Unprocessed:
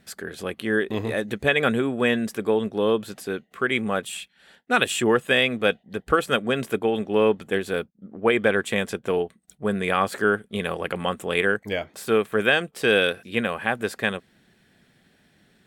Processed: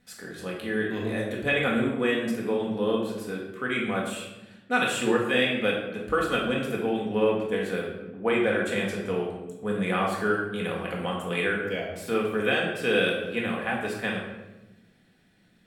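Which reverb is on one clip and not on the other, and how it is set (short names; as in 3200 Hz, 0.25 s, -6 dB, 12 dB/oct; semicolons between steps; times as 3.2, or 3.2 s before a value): shoebox room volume 490 m³, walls mixed, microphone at 1.9 m; gain -8.5 dB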